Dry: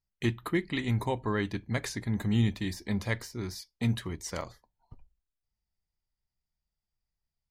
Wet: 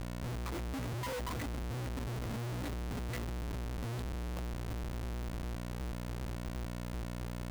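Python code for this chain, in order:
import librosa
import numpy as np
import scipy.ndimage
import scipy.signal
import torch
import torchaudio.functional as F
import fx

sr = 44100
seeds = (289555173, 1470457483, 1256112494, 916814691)

y = fx.bin_expand(x, sr, power=2.0)
y = fx.lpc_vocoder(y, sr, seeds[0], excitation='pitch_kept', order=10)
y = fx.dereverb_blind(y, sr, rt60_s=1.5)
y = fx.rider(y, sr, range_db=5, speed_s=0.5)
y = fx.octave_resonator(y, sr, note='B', decay_s=0.18)
y = fx.echo_swing(y, sr, ms=1117, ratio=3, feedback_pct=45, wet_db=-20.5)
y = fx.dmg_buzz(y, sr, base_hz=60.0, harmonics=6, level_db=-58.0, tilt_db=-6, odd_only=False)
y = fx.peak_eq(y, sr, hz=85.0, db=11.0, octaves=0.38)
y = fx.transient(y, sr, attack_db=-12, sustain_db=11)
y = fx.peak_eq(y, sr, hz=1200.0, db=5.5, octaves=0.26)
y = fx.schmitt(y, sr, flips_db=-55.0)
y = y * librosa.db_to_amplitude(8.5)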